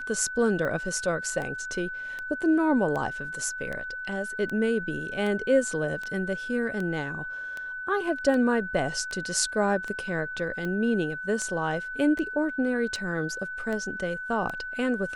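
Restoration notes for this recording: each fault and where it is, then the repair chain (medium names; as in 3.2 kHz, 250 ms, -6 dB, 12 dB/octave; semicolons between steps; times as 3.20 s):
tick 78 rpm -21 dBFS
whine 1.5 kHz -33 dBFS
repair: de-click; band-stop 1.5 kHz, Q 30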